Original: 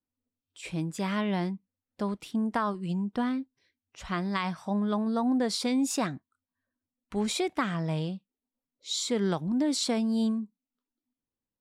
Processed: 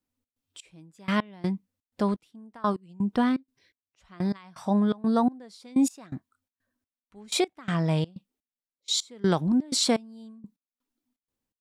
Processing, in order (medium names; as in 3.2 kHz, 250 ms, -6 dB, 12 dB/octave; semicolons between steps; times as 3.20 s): trance gate "xx.xx....x..x" 125 bpm -24 dB; trim +5.5 dB